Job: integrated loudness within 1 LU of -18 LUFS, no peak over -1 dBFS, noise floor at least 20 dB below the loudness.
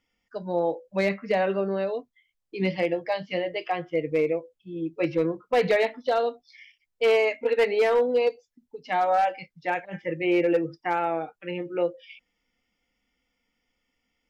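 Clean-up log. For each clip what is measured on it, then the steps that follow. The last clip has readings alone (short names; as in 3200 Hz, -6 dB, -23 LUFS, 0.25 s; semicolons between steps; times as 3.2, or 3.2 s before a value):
clipped 0.6%; flat tops at -15.5 dBFS; loudness -26.0 LUFS; peak -15.5 dBFS; loudness target -18.0 LUFS
-> clip repair -15.5 dBFS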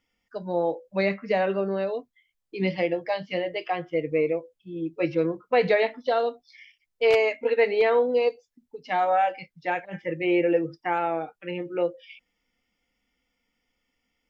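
clipped 0.0%; loudness -26.0 LUFS; peak -6.5 dBFS; loudness target -18.0 LUFS
-> gain +8 dB; limiter -1 dBFS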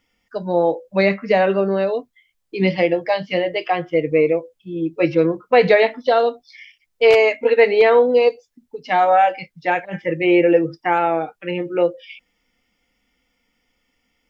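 loudness -18.0 LUFS; peak -1.0 dBFS; noise floor -71 dBFS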